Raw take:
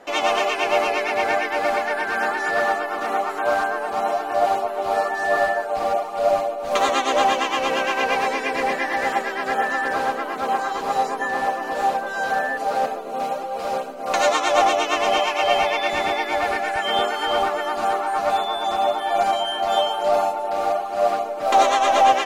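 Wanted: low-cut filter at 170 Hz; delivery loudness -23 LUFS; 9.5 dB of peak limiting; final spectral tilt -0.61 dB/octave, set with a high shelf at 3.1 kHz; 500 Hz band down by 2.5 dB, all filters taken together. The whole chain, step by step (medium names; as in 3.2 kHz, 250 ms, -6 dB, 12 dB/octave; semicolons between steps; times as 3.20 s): high-pass 170 Hz; peaking EQ 500 Hz -3.5 dB; treble shelf 3.1 kHz +6.5 dB; trim +0.5 dB; peak limiter -13.5 dBFS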